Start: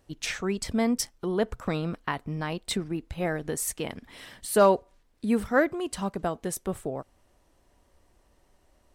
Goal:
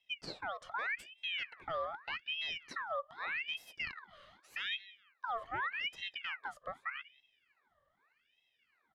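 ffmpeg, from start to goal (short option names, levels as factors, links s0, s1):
-filter_complex "[0:a]acrossover=split=2000[s0][s1];[s1]acrusher=bits=3:mode=log:mix=0:aa=0.000001[s2];[s0][s2]amix=inputs=2:normalize=0,asplit=3[s3][s4][s5];[s3]bandpass=f=300:t=q:w=8,volume=1[s6];[s4]bandpass=f=870:t=q:w=8,volume=0.501[s7];[s5]bandpass=f=2240:t=q:w=8,volume=0.355[s8];[s6][s7][s8]amix=inputs=3:normalize=0,asplit=2[s9][s10];[s10]adelay=186,lowpass=f=1400:p=1,volume=0.0794,asplit=2[s11][s12];[s12]adelay=186,lowpass=f=1400:p=1,volume=0.26[s13];[s9][s11][s13]amix=inputs=3:normalize=0,alimiter=level_in=3.16:limit=0.0631:level=0:latency=1:release=18,volume=0.316,aeval=exprs='val(0)*sin(2*PI*1900*n/s+1900*0.55/0.83*sin(2*PI*0.83*n/s))':c=same,volume=1.88"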